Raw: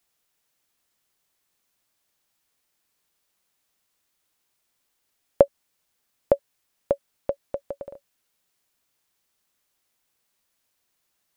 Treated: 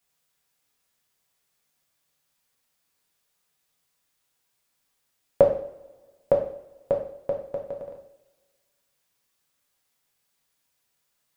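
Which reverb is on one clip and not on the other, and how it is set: two-slope reverb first 0.56 s, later 1.7 s, from -20 dB, DRR -1 dB; trim -3.5 dB

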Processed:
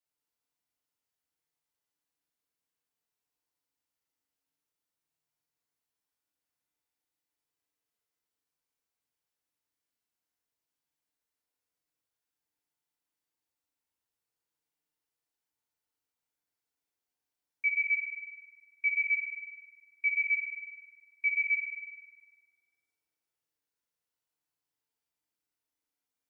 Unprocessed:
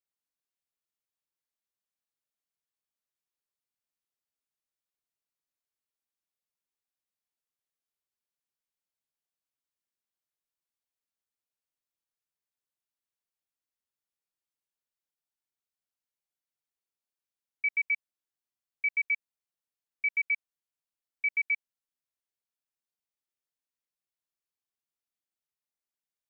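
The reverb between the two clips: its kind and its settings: FDN reverb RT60 2.1 s, low-frequency decay 0.95×, high-frequency decay 0.5×, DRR -5.5 dB; trim -2.5 dB

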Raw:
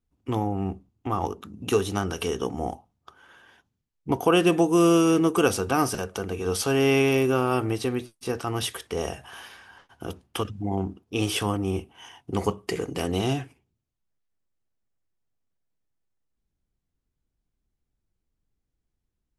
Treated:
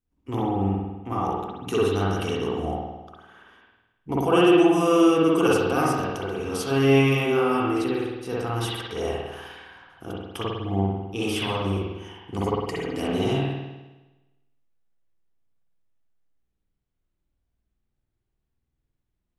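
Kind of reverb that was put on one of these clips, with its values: spring tank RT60 1.1 s, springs 51 ms, chirp 20 ms, DRR -6.5 dB; trim -5.5 dB

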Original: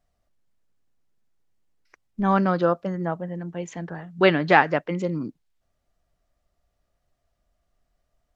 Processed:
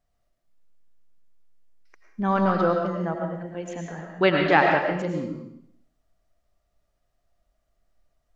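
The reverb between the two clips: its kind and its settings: algorithmic reverb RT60 0.73 s, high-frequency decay 1×, pre-delay 65 ms, DRR 1.5 dB; trim -2.5 dB

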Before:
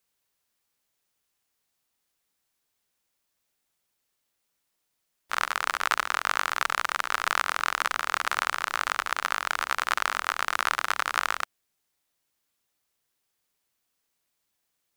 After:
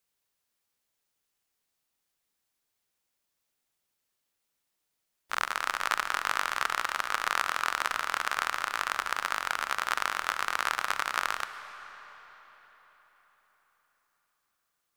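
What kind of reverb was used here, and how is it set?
algorithmic reverb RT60 4.6 s, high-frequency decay 0.8×, pre-delay 95 ms, DRR 11.5 dB; trim -3 dB

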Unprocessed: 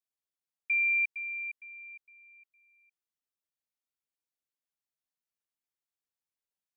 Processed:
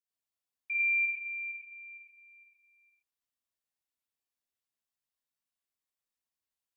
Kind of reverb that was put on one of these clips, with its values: gated-style reverb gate 140 ms rising, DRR -6 dB; trim -7 dB

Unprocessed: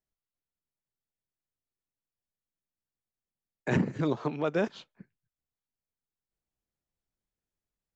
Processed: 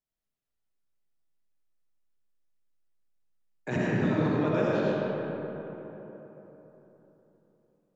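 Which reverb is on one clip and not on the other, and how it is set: algorithmic reverb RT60 3.9 s, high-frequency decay 0.45×, pre-delay 40 ms, DRR -7 dB; trim -4.5 dB

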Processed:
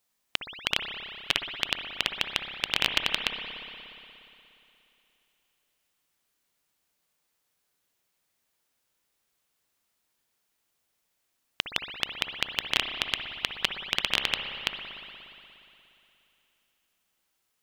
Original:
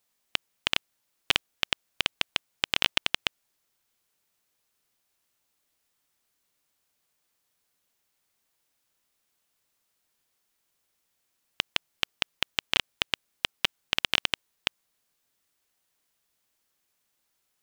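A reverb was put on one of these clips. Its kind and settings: spring tank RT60 3 s, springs 59 ms, chirp 50 ms, DRR 4.5 dB; trim -1 dB

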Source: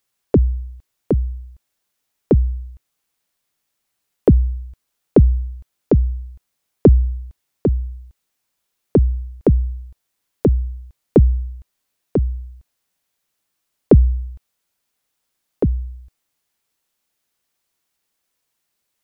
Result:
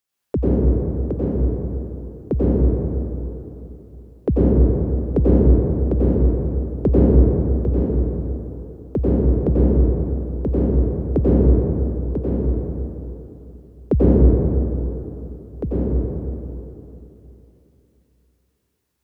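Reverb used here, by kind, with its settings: plate-style reverb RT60 3.2 s, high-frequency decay 0.4×, pre-delay 80 ms, DRR -8.5 dB; trim -8.5 dB

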